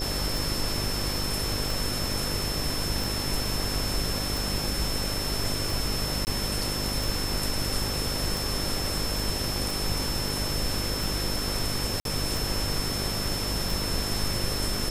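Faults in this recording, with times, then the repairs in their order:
buzz 50 Hz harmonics 12 -34 dBFS
tick 45 rpm
whine 5.3 kHz -32 dBFS
6.25–6.27 s: dropout 19 ms
12.00–12.05 s: dropout 52 ms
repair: de-click; de-hum 50 Hz, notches 12; band-stop 5.3 kHz, Q 30; interpolate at 6.25 s, 19 ms; interpolate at 12.00 s, 52 ms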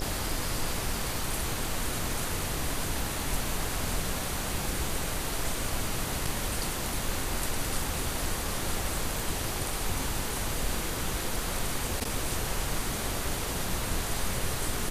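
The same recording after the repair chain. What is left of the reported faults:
nothing left

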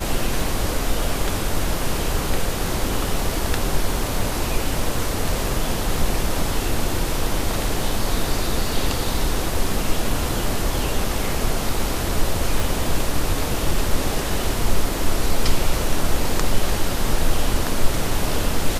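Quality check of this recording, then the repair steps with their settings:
12.60 s: pop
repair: de-click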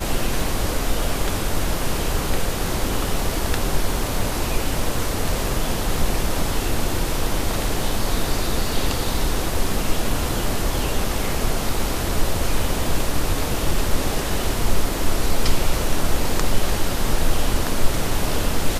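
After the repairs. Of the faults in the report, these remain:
12.60 s: pop

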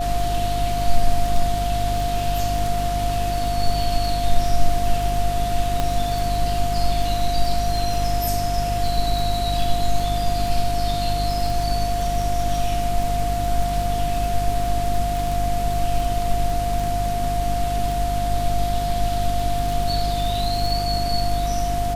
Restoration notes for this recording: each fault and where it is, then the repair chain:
crackle 23 per s -24 dBFS
hum 50 Hz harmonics 6 -26 dBFS
whine 700 Hz -23 dBFS
5.80 s: pop -8 dBFS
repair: de-click; de-hum 50 Hz, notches 6; band-stop 700 Hz, Q 30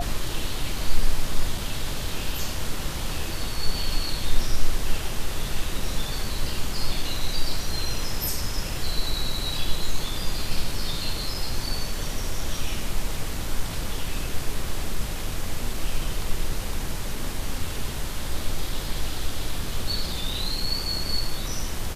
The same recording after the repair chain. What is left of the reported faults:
nothing left

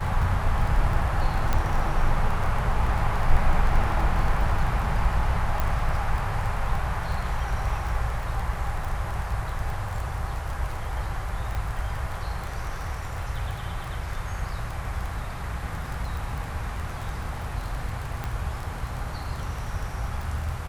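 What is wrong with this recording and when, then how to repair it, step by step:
crackle 21 per s -29 dBFS
1.53 s: pop -11 dBFS
5.60 s: pop
11.55 s: pop -19 dBFS
18.24 s: pop -17 dBFS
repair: de-click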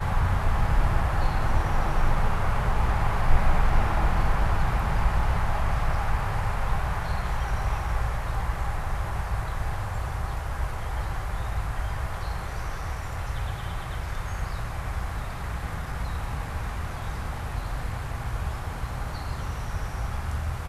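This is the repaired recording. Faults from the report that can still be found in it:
nothing left

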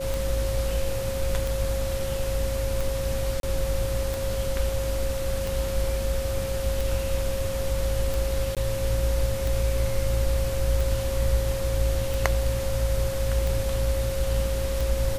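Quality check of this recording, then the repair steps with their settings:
tick 45 rpm
whine 540 Hz -29 dBFS
3.40–3.43 s: dropout 32 ms
8.55–8.57 s: dropout 17 ms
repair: de-click; band-stop 540 Hz, Q 30; interpolate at 3.40 s, 32 ms; interpolate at 8.55 s, 17 ms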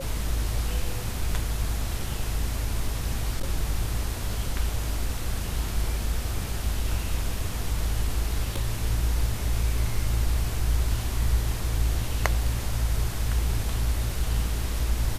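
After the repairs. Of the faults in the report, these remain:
nothing left

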